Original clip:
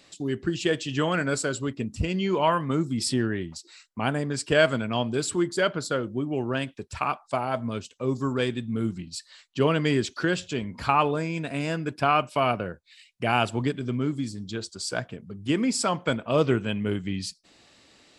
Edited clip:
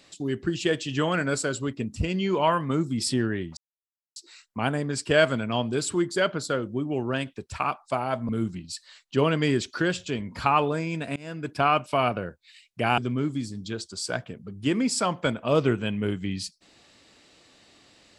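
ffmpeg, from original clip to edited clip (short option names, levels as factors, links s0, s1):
-filter_complex "[0:a]asplit=5[s0][s1][s2][s3][s4];[s0]atrim=end=3.57,asetpts=PTS-STARTPTS,afade=t=out:st=3.566:d=0.004:c=hsin,apad=pad_dur=0.59[s5];[s1]atrim=start=3.57:end=7.702,asetpts=PTS-STARTPTS,afade=t=in:d=0.004:c=hsin[s6];[s2]atrim=start=8.718:end=11.59,asetpts=PTS-STARTPTS,afade=t=out:st=2.868:d=0.004:c=hsin:silence=0.0630957[s7];[s3]atrim=start=11.59:end=13.412,asetpts=PTS-STARTPTS,afade=t=in:d=0.38:silence=0.0630957[s8];[s4]atrim=start=13.808[s9];[s5][s6]concat=n=2:v=0:a=1[s10];[s7][s8]concat=n=2:v=0:a=1[s11];[s10][s11]acrossfade=d=0.004:c1=hsin:c2=hsin[s12];[s12][s9]acrossfade=d=0.004:c1=hsin:c2=hsin"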